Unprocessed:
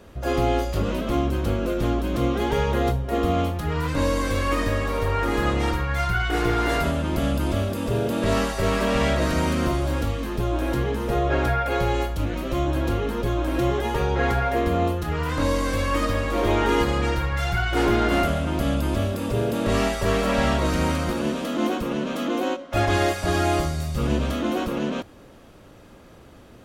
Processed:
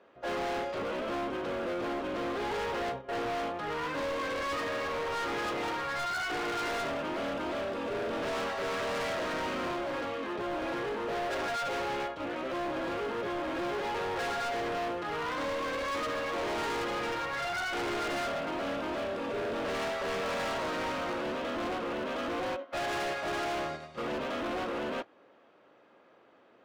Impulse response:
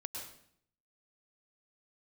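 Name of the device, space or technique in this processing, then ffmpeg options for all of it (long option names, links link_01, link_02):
walkie-talkie: -af "highpass=420,lowpass=2600,asoftclip=type=hard:threshold=-31.5dB,agate=range=-8dB:threshold=-38dB:ratio=16:detection=peak"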